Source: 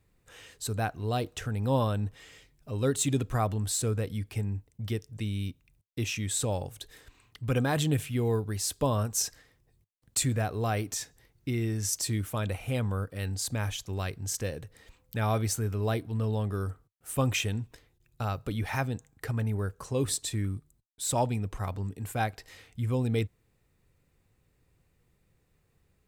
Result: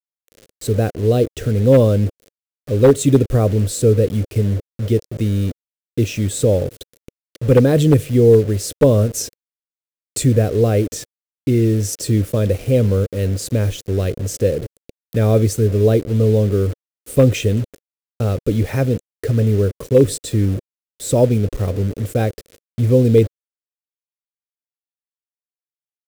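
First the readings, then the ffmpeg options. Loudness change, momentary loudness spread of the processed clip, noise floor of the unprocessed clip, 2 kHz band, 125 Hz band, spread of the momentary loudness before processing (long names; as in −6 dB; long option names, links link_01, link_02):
+14.0 dB, 11 LU, −71 dBFS, +4.5 dB, +13.5 dB, 10 LU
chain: -af "acrusher=bits=6:mix=0:aa=0.000001,lowshelf=frequency=660:width_type=q:width=3:gain=9,aeval=exprs='0.447*(abs(mod(val(0)/0.447+3,4)-2)-1)':channel_layout=same,volume=4.5dB"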